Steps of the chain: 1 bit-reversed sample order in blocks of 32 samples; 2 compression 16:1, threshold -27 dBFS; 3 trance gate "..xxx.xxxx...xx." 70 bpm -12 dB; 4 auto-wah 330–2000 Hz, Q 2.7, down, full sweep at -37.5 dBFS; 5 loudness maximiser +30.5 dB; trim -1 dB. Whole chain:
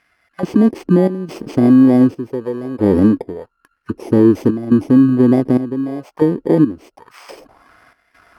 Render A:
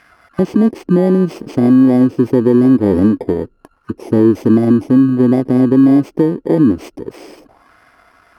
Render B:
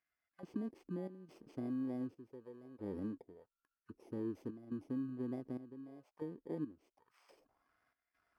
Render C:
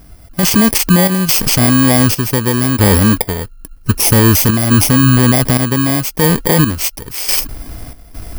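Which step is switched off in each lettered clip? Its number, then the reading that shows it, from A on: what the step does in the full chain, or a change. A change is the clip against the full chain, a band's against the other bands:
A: 3, crest factor change -2.0 dB; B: 5, crest factor change +4.0 dB; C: 4, 2 kHz band +12.0 dB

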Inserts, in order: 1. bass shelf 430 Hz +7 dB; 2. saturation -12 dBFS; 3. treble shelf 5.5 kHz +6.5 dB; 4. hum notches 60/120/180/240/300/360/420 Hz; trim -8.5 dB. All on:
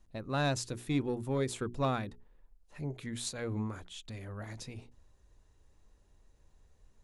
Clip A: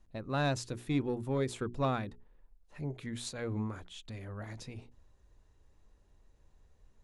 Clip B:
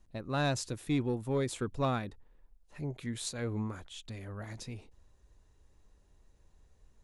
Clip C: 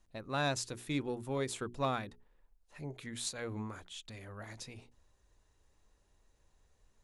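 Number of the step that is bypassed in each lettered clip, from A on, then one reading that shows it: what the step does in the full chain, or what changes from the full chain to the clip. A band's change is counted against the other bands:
3, 8 kHz band -4.0 dB; 4, crest factor change -1.5 dB; 1, 125 Hz band -5.5 dB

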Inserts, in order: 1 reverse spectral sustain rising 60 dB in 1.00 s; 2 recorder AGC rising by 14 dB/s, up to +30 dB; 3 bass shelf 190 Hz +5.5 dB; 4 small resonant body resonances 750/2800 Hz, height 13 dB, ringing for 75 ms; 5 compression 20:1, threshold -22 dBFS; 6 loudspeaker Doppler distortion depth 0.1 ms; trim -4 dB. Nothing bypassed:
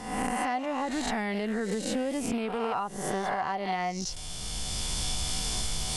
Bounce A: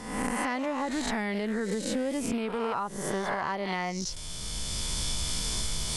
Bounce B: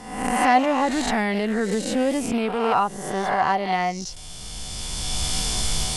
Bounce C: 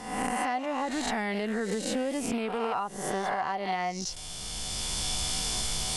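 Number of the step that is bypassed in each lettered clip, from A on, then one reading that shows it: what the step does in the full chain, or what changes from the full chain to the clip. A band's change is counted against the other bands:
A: 4, 1 kHz band -3.0 dB; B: 5, mean gain reduction 6.0 dB; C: 3, 125 Hz band -3.0 dB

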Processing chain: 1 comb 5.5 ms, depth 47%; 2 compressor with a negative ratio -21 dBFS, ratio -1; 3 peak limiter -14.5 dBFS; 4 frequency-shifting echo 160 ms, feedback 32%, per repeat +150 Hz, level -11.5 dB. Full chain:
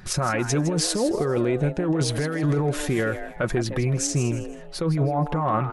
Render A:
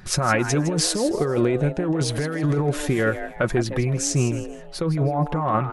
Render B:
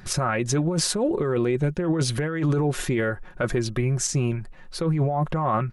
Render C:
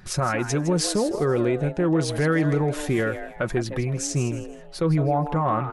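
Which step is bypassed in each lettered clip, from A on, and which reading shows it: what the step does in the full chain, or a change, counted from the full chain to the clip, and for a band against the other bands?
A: 3, crest factor change +6.5 dB; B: 4, crest factor change -2.0 dB; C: 2, 8 kHz band -3.0 dB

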